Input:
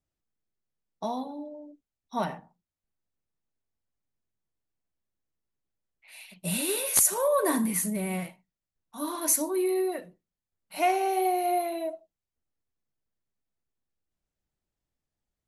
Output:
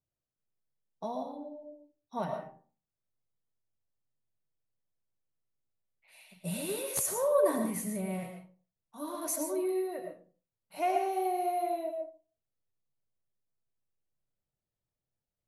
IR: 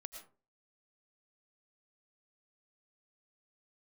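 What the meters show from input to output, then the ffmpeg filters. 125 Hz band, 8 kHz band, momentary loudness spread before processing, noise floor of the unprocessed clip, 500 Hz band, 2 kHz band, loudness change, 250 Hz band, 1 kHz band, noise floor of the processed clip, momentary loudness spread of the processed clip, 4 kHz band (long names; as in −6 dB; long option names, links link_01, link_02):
−4.0 dB, −10.0 dB, 17 LU, below −85 dBFS, −2.5 dB, −9.0 dB, −6.0 dB, −5.5 dB, −4.5 dB, below −85 dBFS, 17 LU, −9.5 dB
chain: -filter_complex "[1:a]atrim=start_sample=2205,asetrate=43659,aresample=44100[link_01];[0:a][link_01]afir=irnorm=-1:irlink=0,volume=17.5dB,asoftclip=hard,volume=-17.5dB,equalizer=frequency=125:width_type=o:width=1:gain=12,equalizer=frequency=500:width_type=o:width=1:gain=7,equalizer=frequency=1000:width_type=o:width=1:gain=3,volume=-5dB"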